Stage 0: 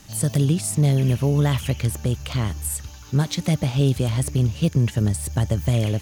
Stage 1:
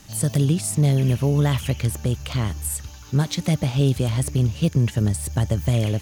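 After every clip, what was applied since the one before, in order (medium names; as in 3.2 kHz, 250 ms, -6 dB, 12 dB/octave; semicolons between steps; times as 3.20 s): no audible change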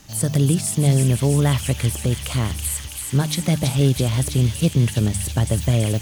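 de-hum 50.17 Hz, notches 4; in parallel at -11.5 dB: bit crusher 6-bit; on the sum: feedback echo behind a high-pass 328 ms, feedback 78%, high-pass 2.4 kHz, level -5 dB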